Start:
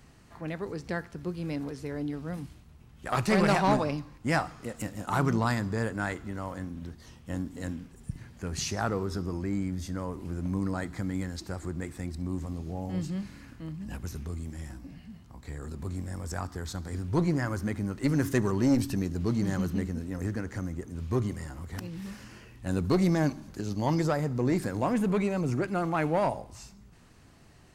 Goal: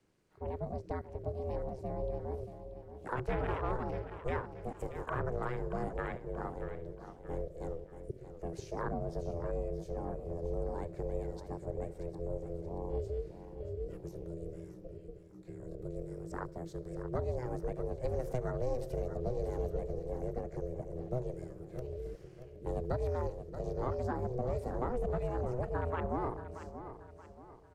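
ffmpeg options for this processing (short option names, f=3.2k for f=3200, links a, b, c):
-filter_complex "[0:a]afwtdn=0.0251,asettb=1/sr,asplit=3[a][b][c];[a]atrim=end=2.434[d];[b]atrim=start=2.43:end=3.15,asetpts=PTS-STARTPTS,afade=t=in:d=0.004:c=qsin,afade=t=out:st=0.716:d=0.004:c=qsin,tiltshelf=f=970:g=-3[e];[c]atrim=start=3.146[f];[d][e]acrossfade=d=0.004:c1=hsin:c2=qsin[g];[g][f]acrossfade=d=0.004:c1=qsin:c2=hsin,acrossover=split=110|980[h][i][j];[h]acompressor=threshold=-52dB:ratio=6[k];[k][i][j]amix=inputs=3:normalize=0,aeval=exprs='val(0)*sin(2*PI*250*n/s)':c=same,acrossover=split=270|1700[l][m][n];[l]acompressor=threshold=-36dB:ratio=4[o];[m]acompressor=threshold=-37dB:ratio=4[p];[n]acompressor=threshold=-54dB:ratio=4[q];[o][p][q]amix=inputs=3:normalize=0,aecho=1:1:630|1260|1890|2520:0.282|0.113|0.0451|0.018,volume=1dB"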